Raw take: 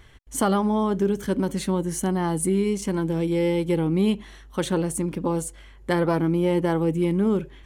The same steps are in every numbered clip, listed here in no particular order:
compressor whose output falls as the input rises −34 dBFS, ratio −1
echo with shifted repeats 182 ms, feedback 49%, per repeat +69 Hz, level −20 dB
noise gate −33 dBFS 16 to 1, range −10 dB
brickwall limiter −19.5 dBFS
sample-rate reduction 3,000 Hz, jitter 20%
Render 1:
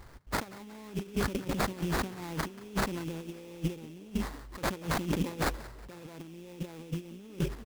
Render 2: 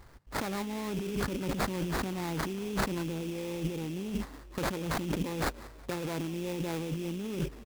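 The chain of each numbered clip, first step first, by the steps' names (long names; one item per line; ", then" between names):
compressor whose output falls as the input rises, then sample-rate reduction, then brickwall limiter, then noise gate, then echo with shifted repeats
noise gate, then brickwall limiter, then compressor whose output falls as the input rises, then echo with shifted repeats, then sample-rate reduction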